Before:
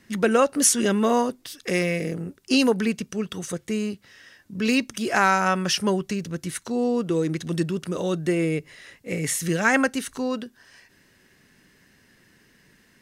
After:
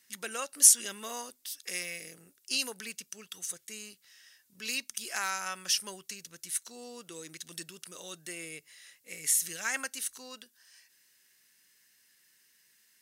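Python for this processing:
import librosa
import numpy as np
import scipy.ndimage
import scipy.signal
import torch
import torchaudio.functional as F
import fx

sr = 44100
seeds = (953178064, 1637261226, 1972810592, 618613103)

y = F.preemphasis(torch.from_numpy(x), 0.97).numpy()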